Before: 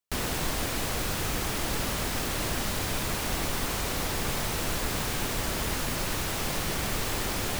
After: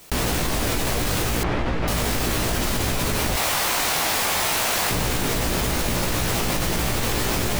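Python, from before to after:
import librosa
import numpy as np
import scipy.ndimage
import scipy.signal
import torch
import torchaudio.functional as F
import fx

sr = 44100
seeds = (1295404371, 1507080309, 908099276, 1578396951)

p1 = fx.cheby2_highpass(x, sr, hz=320.0, order=4, stop_db=40, at=(3.34, 4.91))
p2 = fx.doubler(p1, sr, ms=17.0, db=-3.5)
p3 = fx.sample_hold(p2, sr, seeds[0], rate_hz=1800.0, jitter_pct=0)
p4 = p2 + F.gain(torch.from_numpy(p3), -9.0).numpy()
p5 = fx.lowpass(p4, sr, hz=2300.0, slope=12, at=(1.43, 1.88))
y = fx.env_flatten(p5, sr, amount_pct=100)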